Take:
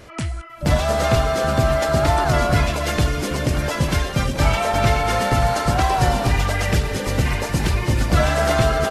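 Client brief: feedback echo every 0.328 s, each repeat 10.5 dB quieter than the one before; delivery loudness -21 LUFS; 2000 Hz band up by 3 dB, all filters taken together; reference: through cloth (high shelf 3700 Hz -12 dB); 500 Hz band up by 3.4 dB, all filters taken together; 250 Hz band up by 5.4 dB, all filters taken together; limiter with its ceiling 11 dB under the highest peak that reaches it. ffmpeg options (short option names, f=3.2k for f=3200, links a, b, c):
-af "equalizer=f=250:t=o:g=6.5,equalizer=f=500:t=o:g=3.5,equalizer=f=2k:t=o:g=6.5,alimiter=limit=-13.5dB:level=0:latency=1,highshelf=f=3.7k:g=-12,aecho=1:1:328|656|984:0.299|0.0896|0.0269,volume=1.5dB"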